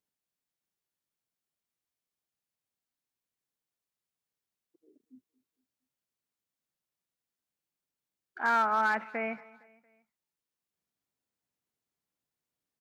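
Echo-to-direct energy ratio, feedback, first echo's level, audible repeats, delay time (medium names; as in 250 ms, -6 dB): -21.0 dB, 48%, -22.0 dB, 3, 230 ms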